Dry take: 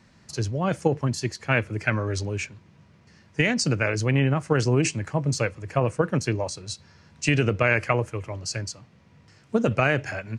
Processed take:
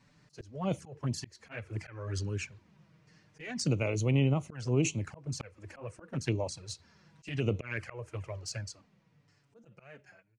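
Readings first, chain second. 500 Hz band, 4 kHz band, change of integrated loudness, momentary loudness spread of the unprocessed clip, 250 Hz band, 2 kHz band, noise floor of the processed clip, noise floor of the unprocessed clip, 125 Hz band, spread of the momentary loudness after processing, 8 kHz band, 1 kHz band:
−11.5 dB, −10.0 dB, −9.5 dB, 10 LU, −9.0 dB, −16.0 dB, −69 dBFS, −56 dBFS, −8.0 dB, 17 LU, −8.5 dB, −16.0 dB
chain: fade-out on the ending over 2.21 s
volume swells 303 ms
flanger swept by the level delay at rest 7.4 ms, full sweep at −22.5 dBFS
level −4.5 dB

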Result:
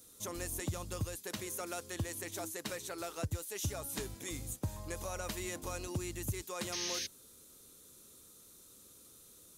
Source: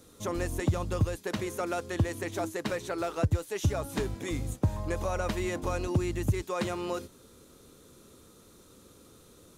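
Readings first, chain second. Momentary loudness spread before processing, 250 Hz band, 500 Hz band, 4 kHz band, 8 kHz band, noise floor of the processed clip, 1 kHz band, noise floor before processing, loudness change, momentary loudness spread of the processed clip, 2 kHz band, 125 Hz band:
4 LU, −11.0 dB, −10.5 dB, +0.5 dB, +3.0 dB, −59 dBFS, −9.5 dB, −57 dBFS, −7.5 dB, 18 LU, −6.5 dB, −11.0 dB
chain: sound drawn into the spectrogram noise, 0:06.72–0:07.07, 1,500–6,600 Hz −37 dBFS
first-order pre-emphasis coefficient 0.8
level +3 dB

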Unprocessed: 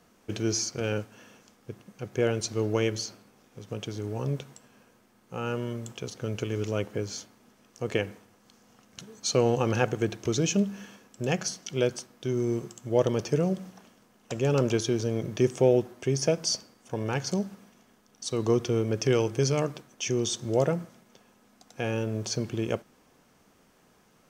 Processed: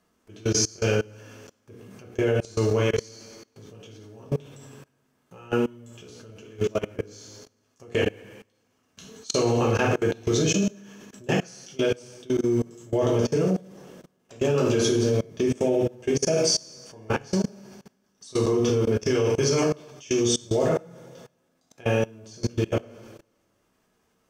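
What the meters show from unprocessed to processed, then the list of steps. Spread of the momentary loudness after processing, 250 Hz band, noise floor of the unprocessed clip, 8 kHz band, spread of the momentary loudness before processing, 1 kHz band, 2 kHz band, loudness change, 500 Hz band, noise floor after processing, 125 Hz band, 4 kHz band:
10 LU, +3.5 dB, −63 dBFS, +3.5 dB, 13 LU, +2.5 dB, +4.0 dB, +3.5 dB, +3.5 dB, −70 dBFS, +1.5 dB, +3.0 dB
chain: coupled-rooms reverb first 0.67 s, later 2 s, DRR −4.5 dB
output level in coarse steps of 24 dB
level +2.5 dB

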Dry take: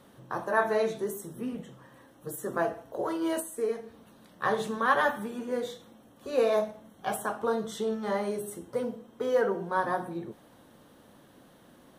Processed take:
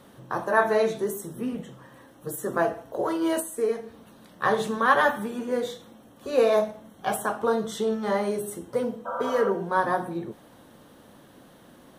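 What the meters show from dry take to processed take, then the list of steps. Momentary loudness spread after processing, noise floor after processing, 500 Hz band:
13 LU, −53 dBFS, +4.0 dB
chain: healed spectral selection 0:09.09–0:09.44, 510–1,600 Hz after
level +4.5 dB

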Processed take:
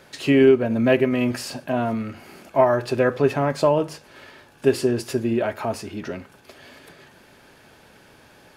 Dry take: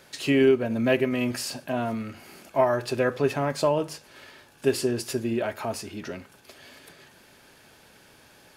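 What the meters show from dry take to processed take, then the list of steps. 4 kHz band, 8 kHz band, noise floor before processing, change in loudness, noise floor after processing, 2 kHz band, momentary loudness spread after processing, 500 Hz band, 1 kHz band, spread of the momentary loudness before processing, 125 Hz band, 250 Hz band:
+0.5 dB, −1.5 dB, −55 dBFS, +4.5 dB, −52 dBFS, +3.0 dB, 15 LU, +5.0 dB, +4.5 dB, 16 LU, +5.0 dB, +5.0 dB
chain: high-shelf EQ 3,100 Hz −7.5 dB
level +5 dB

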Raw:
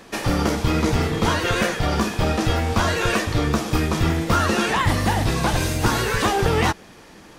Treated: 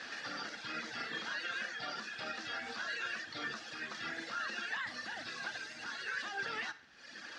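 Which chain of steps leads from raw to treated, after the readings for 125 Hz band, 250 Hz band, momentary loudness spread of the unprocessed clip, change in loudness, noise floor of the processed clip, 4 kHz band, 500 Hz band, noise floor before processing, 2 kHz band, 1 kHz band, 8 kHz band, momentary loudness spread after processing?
−40.0 dB, −29.5 dB, 2 LU, −19.0 dB, −53 dBFS, −15.0 dB, −27.0 dB, −45 dBFS, −12.0 dB, −20.5 dB, −22.5 dB, 5 LU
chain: notch filter 3,100 Hz, Q 13
reverb reduction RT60 0.86 s
first difference
downward compressor 6 to 1, threshold −50 dBFS, peak gain reduction 19 dB
brickwall limiter −43.5 dBFS, peak gain reduction 8.5 dB
background noise brown −80 dBFS
bit-depth reduction 12 bits, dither none
loudspeaker in its box 140–4,200 Hz, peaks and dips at 240 Hz +7 dB, 420 Hz −4 dB, 1,000 Hz −7 dB, 1,600 Hz +9 dB, 2,300 Hz −6 dB, 3,700 Hz −5 dB
backwards echo 909 ms −14.5 dB
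four-comb reverb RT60 0.63 s, combs from 31 ms, DRR 14.5 dB
level +15.5 dB

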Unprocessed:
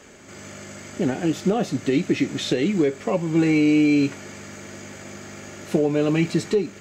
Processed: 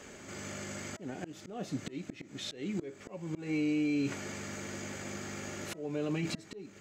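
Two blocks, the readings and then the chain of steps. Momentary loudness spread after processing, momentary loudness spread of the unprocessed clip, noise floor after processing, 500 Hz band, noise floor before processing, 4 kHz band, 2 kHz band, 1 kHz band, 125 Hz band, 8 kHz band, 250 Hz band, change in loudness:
12 LU, 20 LU, −54 dBFS, −17.5 dB, −43 dBFS, −11.0 dB, −11.5 dB, −13.5 dB, −14.0 dB, −7.0 dB, −14.5 dB, −16.0 dB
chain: volume swells 663 ms
brickwall limiter −22.5 dBFS, peak gain reduction 10.5 dB
hum removal 323.3 Hz, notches 6
level −2.5 dB

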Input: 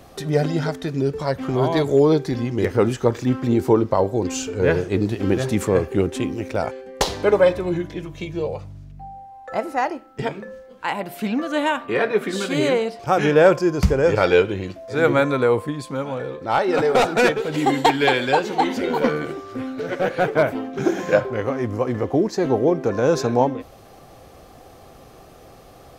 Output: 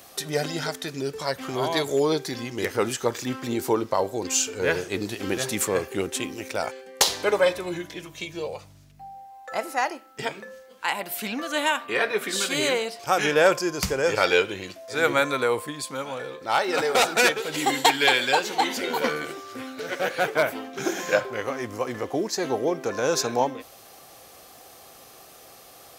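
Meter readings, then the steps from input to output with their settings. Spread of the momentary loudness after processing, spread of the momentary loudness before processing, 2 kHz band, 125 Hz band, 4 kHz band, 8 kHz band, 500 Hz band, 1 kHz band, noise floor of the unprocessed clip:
12 LU, 12 LU, +0.5 dB, −12.5 dB, +4.0 dB, +7.5 dB, −6.0 dB, −3.0 dB, −46 dBFS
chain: spectral tilt +3.5 dB per octave
level −2.5 dB

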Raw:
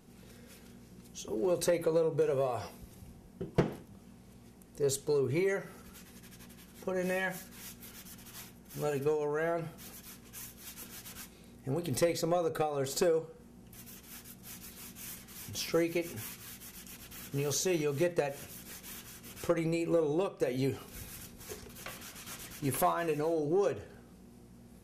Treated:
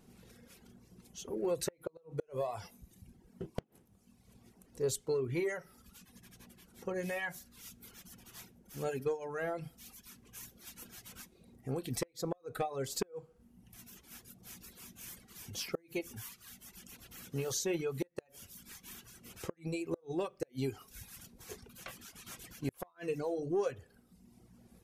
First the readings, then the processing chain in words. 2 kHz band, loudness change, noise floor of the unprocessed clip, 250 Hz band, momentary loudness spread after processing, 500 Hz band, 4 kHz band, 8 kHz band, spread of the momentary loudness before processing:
−4.5 dB, −6.5 dB, −56 dBFS, −5.5 dB, 20 LU, −6.5 dB, −4.0 dB, −3.5 dB, 19 LU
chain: reverb reduction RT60 1.1 s
gate with flip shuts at −21 dBFS, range −34 dB
level −2.5 dB

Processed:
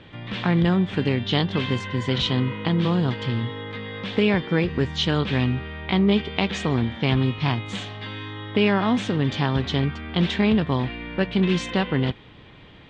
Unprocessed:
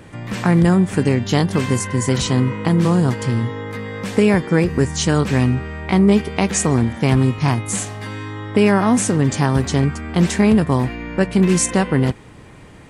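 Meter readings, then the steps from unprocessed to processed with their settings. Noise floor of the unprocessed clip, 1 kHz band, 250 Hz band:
−41 dBFS, −5.5 dB, −6.0 dB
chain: transistor ladder low-pass 3,800 Hz, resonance 65%
level +5 dB

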